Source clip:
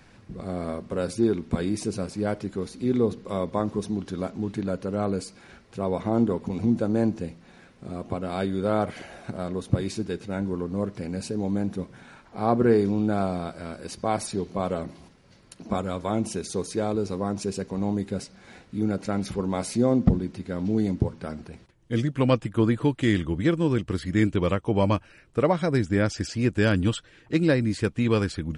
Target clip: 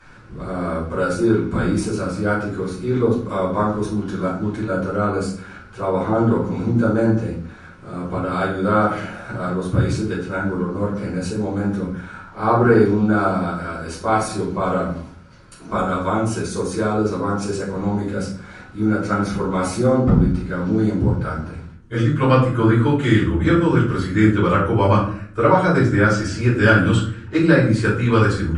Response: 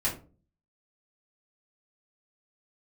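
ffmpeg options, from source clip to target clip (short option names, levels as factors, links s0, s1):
-filter_complex "[0:a]equalizer=f=1400:t=o:w=0.54:g=13.5[s0];[1:a]atrim=start_sample=2205,asetrate=22491,aresample=44100[s1];[s0][s1]afir=irnorm=-1:irlink=0,volume=0.422"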